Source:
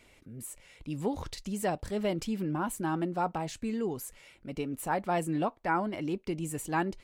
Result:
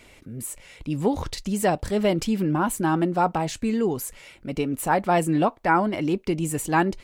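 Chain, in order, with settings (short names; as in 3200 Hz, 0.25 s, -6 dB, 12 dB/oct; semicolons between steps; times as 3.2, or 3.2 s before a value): 0.88–1.49 mismatched tape noise reduction decoder only; gain +9 dB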